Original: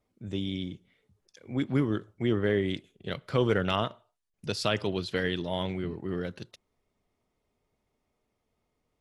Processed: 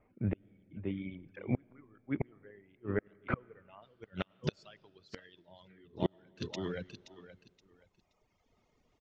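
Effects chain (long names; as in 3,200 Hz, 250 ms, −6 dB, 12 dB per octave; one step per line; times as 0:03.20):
repeating echo 524 ms, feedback 26%, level −11.5 dB
gate with flip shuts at −25 dBFS, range −32 dB
convolution reverb RT60 2.4 s, pre-delay 60 ms, DRR 16 dB
reverb reduction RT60 1.6 s
Chebyshev low-pass filter 2,400 Hz, order 4, from 0:03.81 6,700 Hz
level +9 dB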